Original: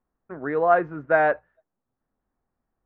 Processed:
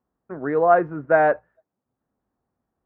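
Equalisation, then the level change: high-pass 67 Hz; treble shelf 2 kHz -11 dB; +4.0 dB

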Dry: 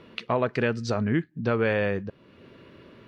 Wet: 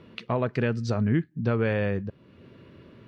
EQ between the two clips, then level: peaking EQ 98 Hz +8 dB 2.9 oct; -4.0 dB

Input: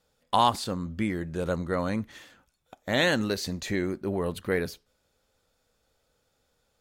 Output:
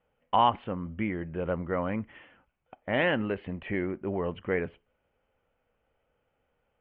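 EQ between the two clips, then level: rippled Chebyshev low-pass 3.1 kHz, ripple 3 dB; 0.0 dB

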